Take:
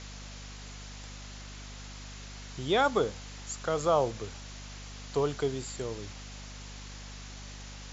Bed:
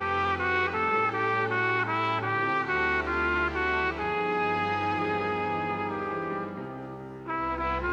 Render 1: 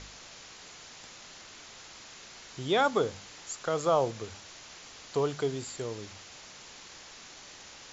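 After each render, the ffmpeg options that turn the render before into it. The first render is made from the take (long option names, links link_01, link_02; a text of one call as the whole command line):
ffmpeg -i in.wav -af "bandreject=frequency=50:width_type=h:width=4,bandreject=frequency=100:width_type=h:width=4,bandreject=frequency=150:width_type=h:width=4,bandreject=frequency=200:width_type=h:width=4,bandreject=frequency=250:width_type=h:width=4" out.wav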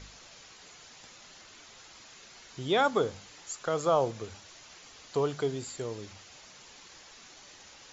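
ffmpeg -i in.wav -af "afftdn=noise_reduction=6:noise_floor=-50" out.wav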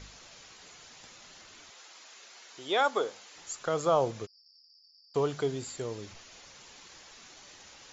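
ffmpeg -i in.wav -filter_complex "[0:a]asettb=1/sr,asplit=3[link_01][link_02][link_03];[link_01]atrim=end=1.704[link_04];[link_02]atrim=start=1.7:end=3.36,asetpts=PTS-STARTPTS,afade=type=in:duration=0.004:curve=qsin,afade=type=out:start_time=1.656:duration=0.004:curve=qsin,highpass=430[link_05];[link_03]atrim=start=3.356[link_06];[link_04][link_05]acrossfade=duration=0.004:curve1=hsin:curve2=qsin[link_07];[link_07][link_06]acrossfade=duration=0.004:curve1=qsin:curve2=hsin,asplit=3[link_08][link_09][link_10];[link_08]afade=type=out:start_time=4.25:duration=0.02[link_11];[link_09]asuperpass=centerf=5000:order=20:qfactor=5.3,afade=type=in:start_time=4.25:duration=0.02,afade=type=out:start_time=5.14:duration=0.02[link_12];[link_10]afade=type=in:start_time=5.14:duration=0.02[link_13];[link_11][link_12][link_13]amix=inputs=3:normalize=0,asettb=1/sr,asplit=3[link_14][link_15][link_16];[link_14]atrim=end=6.144[link_17];[link_15]atrim=start=6.14:end=6.54,asetpts=PTS-STARTPTS,afade=type=in:duration=0.004:curve=qsin,afade=type=out:start_time=0.396:duration=0.004:curve=qsin,afreqshift=-94[link_18];[link_16]atrim=start=6.536[link_19];[link_17][link_18]acrossfade=duration=0.004:curve1=hsin:curve2=qsin[link_20];[link_20][link_19]acrossfade=duration=0.004:curve1=qsin:curve2=hsin" out.wav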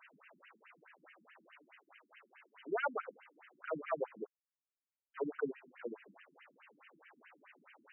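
ffmpeg -i in.wav -af "asoftclip=type=tanh:threshold=-25dB,afftfilt=real='re*between(b*sr/1024,230*pow(2200/230,0.5+0.5*sin(2*PI*4.7*pts/sr))/1.41,230*pow(2200/230,0.5+0.5*sin(2*PI*4.7*pts/sr))*1.41)':imag='im*between(b*sr/1024,230*pow(2200/230,0.5+0.5*sin(2*PI*4.7*pts/sr))/1.41,230*pow(2200/230,0.5+0.5*sin(2*PI*4.7*pts/sr))*1.41)':win_size=1024:overlap=0.75" out.wav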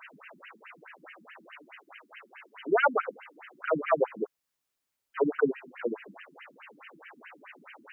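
ffmpeg -i in.wav -af "volume=12dB" out.wav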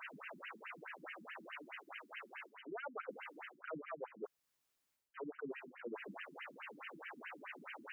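ffmpeg -i in.wav -af "alimiter=limit=-23dB:level=0:latency=1:release=297,areverse,acompressor=threshold=-43dB:ratio=10,areverse" out.wav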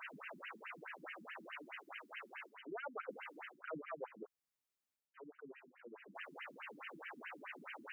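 ffmpeg -i in.wav -filter_complex "[0:a]asplit=3[link_01][link_02][link_03];[link_01]atrim=end=4.232[link_04];[link_02]atrim=start=4.228:end=6.152,asetpts=PTS-STARTPTS,volume=-9.5dB[link_05];[link_03]atrim=start=6.148[link_06];[link_04][link_05]acrossfade=duration=0.004:curve1=hsin:curve2=hsin[link_07];[link_07][link_06]acrossfade=duration=0.004:curve1=hsin:curve2=hsin" out.wav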